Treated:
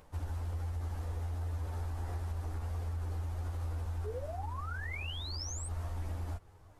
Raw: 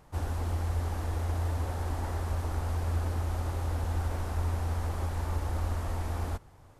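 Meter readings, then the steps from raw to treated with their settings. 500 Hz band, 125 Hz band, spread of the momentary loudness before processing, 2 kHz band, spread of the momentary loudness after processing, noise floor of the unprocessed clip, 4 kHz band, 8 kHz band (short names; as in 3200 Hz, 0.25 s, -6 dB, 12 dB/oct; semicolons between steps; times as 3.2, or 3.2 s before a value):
-6.5 dB, -6.0 dB, 2 LU, -2.5 dB, 2 LU, -55 dBFS, +2.5 dB, -0.5 dB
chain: upward compressor, threshold -50 dBFS; painted sound rise, 4.04–5.68, 400–8700 Hz -30 dBFS; limiter -24.5 dBFS, peak gain reduction 7 dB; compressor, threshold -33 dBFS, peak gain reduction 5.5 dB; chorus voices 6, 0.3 Hz, delay 12 ms, depth 2.3 ms; gain -2 dB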